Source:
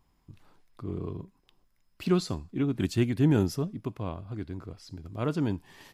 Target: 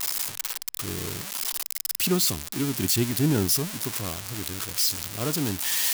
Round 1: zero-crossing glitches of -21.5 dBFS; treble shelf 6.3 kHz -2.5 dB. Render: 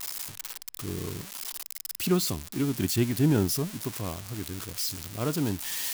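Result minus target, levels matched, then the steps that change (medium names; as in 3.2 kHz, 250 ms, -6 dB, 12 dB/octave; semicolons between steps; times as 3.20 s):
zero-crossing glitches: distortion -7 dB
change: zero-crossing glitches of -14 dBFS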